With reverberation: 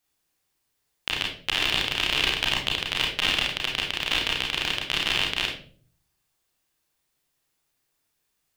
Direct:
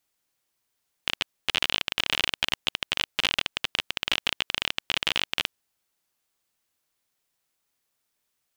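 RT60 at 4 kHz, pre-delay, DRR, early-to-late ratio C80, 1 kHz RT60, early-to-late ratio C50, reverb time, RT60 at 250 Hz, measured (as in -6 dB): 0.35 s, 30 ms, -1.5 dB, 10.0 dB, 0.40 s, 4.5 dB, 0.45 s, 0.75 s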